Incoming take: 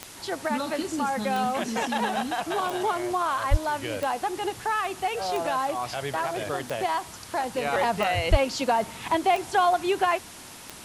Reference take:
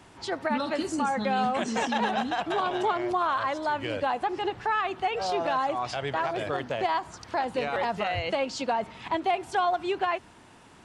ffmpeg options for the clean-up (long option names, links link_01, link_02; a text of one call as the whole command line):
ffmpeg -i in.wav -filter_complex "[0:a]adeclick=threshold=4,asplit=3[link_01][link_02][link_03];[link_01]afade=type=out:start_time=3.5:duration=0.02[link_04];[link_02]highpass=frequency=140:width=0.5412,highpass=frequency=140:width=1.3066,afade=type=in:start_time=3.5:duration=0.02,afade=type=out:start_time=3.62:duration=0.02[link_05];[link_03]afade=type=in:start_time=3.62:duration=0.02[link_06];[link_04][link_05][link_06]amix=inputs=3:normalize=0,asplit=3[link_07][link_08][link_09];[link_07]afade=type=out:start_time=8.3:duration=0.02[link_10];[link_08]highpass=frequency=140:width=0.5412,highpass=frequency=140:width=1.3066,afade=type=in:start_time=8.3:duration=0.02,afade=type=out:start_time=8.42:duration=0.02[link_11];[link_09]afade=type=in:start_time=8.42:duration=0.02[link_12];[link_10][link_11][link_12]amix=inputs=3:normalize=0,afwtdn=0.0071,asetnsamples=nb_out_samples=441:pad=0,asendcmd='7.65 volume volume -4dB',volume=0dB" out.wav